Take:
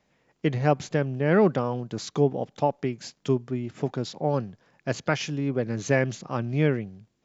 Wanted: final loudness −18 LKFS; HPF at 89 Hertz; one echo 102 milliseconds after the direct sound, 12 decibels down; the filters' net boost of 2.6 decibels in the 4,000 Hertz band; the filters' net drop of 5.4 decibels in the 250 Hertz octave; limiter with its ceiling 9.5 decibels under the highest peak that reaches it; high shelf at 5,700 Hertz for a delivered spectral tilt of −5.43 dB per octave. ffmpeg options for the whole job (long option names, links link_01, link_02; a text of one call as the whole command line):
ffmpeg -i in.wav -af "highpass=89,equalizer=frequency=250:width_type=o:gain=-7.5,equalizer=frequency=4000:width_type=o:gain=6,highshelf=frequency=5700:gain=-6.5,alimiter=limit=-18.5dB:level=0:latency=1,aecho=1:1:102:0.251,volume=14dB" out.wav